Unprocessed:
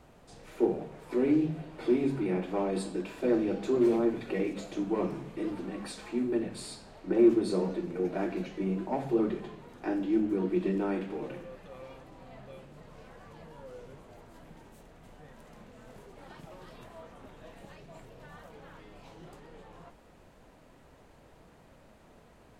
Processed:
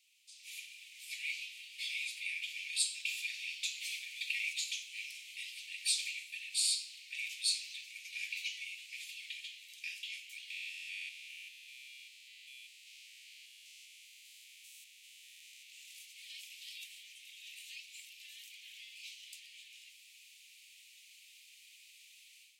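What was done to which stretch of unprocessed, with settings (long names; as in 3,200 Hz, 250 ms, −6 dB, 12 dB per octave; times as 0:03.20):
0:10.50–0:15.70: spectrum averaged block by block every 200 ms
whole clip: Butterworth high-pass 2,300 Hz 72 dB per octave; automatic gain control gain up to 13 dB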